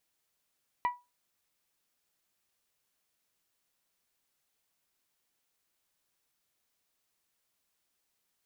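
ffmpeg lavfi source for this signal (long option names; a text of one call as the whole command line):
ffmpeg -f lavfi -i "aevalsrc='0.075*pow(10,-3*t/0.24)*sin(2*PI*977*t)+0.0251*pow(10,-3*t/0.148)*sin(2*PI*1954*t)+0.00841*pow(10,-3*t/0.13)*sin(2*PI*2344.8*t)+0.00282*pow(10,-3*t/0.111)*sin(2*PI*2931*t)+0.000944*pow(10,-3*t/0.091)*sin(2*PI*3908*t)':duration=0.89:sample_rate=44100" out.wav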